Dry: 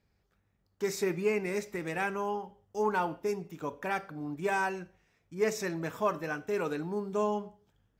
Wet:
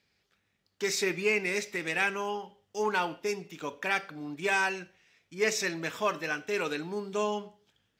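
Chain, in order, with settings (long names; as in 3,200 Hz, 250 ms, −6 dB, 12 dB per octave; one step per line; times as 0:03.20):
meter weighting curve D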